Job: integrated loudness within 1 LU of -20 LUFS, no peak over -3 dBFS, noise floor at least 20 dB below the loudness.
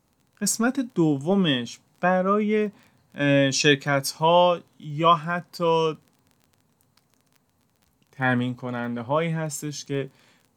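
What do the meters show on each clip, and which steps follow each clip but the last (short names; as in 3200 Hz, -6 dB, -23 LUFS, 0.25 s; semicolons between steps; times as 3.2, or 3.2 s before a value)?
ticks 20/s; loudness -23.5 LUFS; peak -4.0 dBFS; loudness target -20.0 LUFS
-> de-click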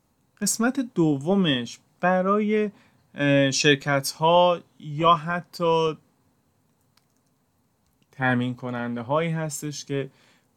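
ticks 0/s; loudness -23.5 LUFS; peak -4.0 dBFS; loudness target -20.0 LUFS
-> gain +3.5 dB; limiter -3 dBFS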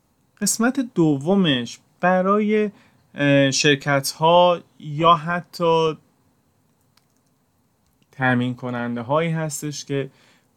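loudness -20.0 LUFS; peak -3.0 dBFS; noise floor -65 dBFS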